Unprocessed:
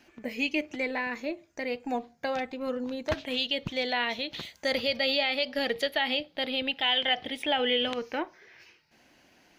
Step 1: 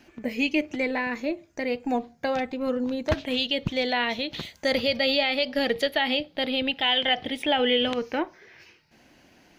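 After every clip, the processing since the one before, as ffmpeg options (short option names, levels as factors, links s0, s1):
-af "lowshelf=f=380:g=6,volume=1.33"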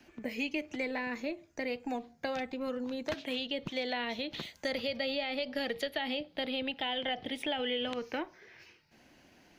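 -filter_complex "[0:a]acrossover=split=150|650|1600|3500[s0][s1][s2][s3][s4];[s0]acompressor=threshold=0.00251:ratio=4[s5];[s1]acompressor=threshold=0.0251:ratio=4[s6];[s2]acompressor=threshold=0.0141:ratio=4[s7];[s3]acompressor=threshold=0.0158:ratio=4[s8];[s4]acompressor=threshold=0.00891:ratio=4[s9];[s5][s6][s7][s8][s9]amix=inputs=5:normalize=0,volume=0.596"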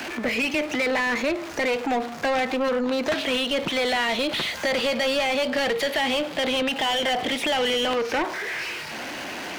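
-filter_complex "[0:a]aeval=exprs='val(0)+0.5*0.00398*sgn(val(0))':c=same,asplit=2[s0][s1];[s1]highpass=f=720:p=1,volume=15.8,asoftclip=type=tanh:threshold=0.0891[s2];[s0][s2]amix=inputs=2:normalize=0,lowpass=f=2700:p=1,volume=0.501,volume=1.88"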